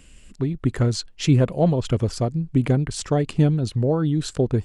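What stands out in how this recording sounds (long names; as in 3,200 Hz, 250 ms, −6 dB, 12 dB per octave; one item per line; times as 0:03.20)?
background noise floor −49 dBFS
spectral slope −7.5 dB per octave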